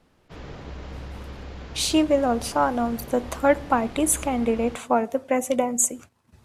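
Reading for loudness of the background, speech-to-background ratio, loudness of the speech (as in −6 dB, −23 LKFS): −40.0 LKFS, 17.0 dB, −23.0 LKFS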